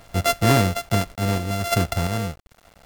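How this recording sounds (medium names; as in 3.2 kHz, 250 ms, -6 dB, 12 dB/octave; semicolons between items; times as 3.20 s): a buzz of ramps at a fixed pitch in blocks of 64 samples; random-step tremolo 2.9 Hz, depth 55%; a quantiser's noise floor 8-bit, dither none; AAC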